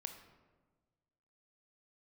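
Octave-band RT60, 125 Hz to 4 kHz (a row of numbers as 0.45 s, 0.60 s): 1.8 s, 1.6 s, 1.5 s, 1.3 s, 1.0 s, 0.70 s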